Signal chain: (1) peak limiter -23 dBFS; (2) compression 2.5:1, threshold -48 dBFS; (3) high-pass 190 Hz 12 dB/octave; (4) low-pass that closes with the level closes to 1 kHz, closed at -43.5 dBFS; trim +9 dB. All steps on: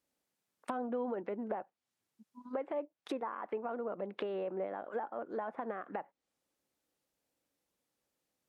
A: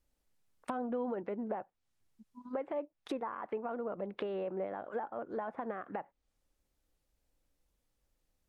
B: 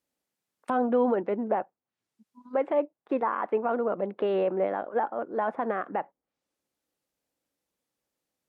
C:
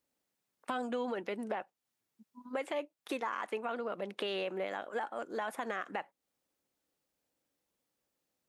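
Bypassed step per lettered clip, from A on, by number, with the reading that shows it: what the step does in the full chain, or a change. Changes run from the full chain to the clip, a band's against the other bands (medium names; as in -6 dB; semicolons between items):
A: 3, momentary loudness spread change +1 LU; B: 2, mean gain reduction 10.0 dB; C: 4, 4 kHz band +11.0 dB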